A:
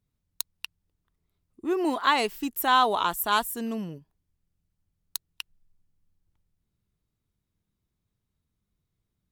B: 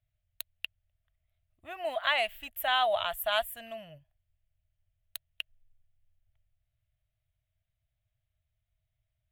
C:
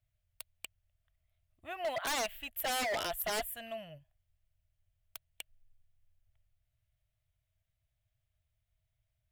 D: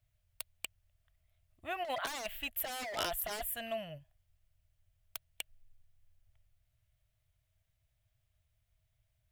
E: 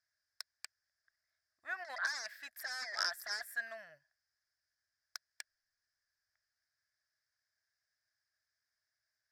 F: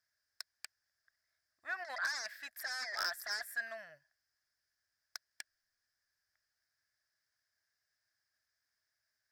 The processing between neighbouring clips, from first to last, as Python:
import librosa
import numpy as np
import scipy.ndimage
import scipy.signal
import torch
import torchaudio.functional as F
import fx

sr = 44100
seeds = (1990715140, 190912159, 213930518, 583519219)

y1 = fx.curve_eq(x, sr, hz=(120.0, 180.0, 420.0, 630.0, 940.0, 1800.0, 3200.0, 5300.0, 12000.0), db=(0, -20, -30, 7, -15, 0, 1, -20, -7))
y2 = 10.0 ** (-28.5 / 20.0) * (np.abs((y1 / 10.0 ** (-28.5 / 20.0) + 3.0) % 4.0 - 2.0) - 1.0)
y3 = fx.over_compress(y2, sr, threshold_db=-37.0, ratio=-0.5)
y3 = y3 * librosa.db_to_amplitude(1.0)
y4 = fx.double_bandpass(y3, sr, hz=2900.0, octaves=1.6)
y4 = y4 * librosa.db_to_amplitude(10.5)
y5 = 10.0 ** (-30.0 / 20.0) * np.tanh(y4 / 10.0 ** (-30.0 / 20.0))
y5 = y5 * librosa.db_to_amplitude(2.0)